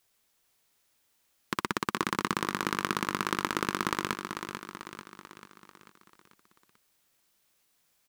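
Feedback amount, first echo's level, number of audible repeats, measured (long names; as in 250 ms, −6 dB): 52%, −7.5 dB, 5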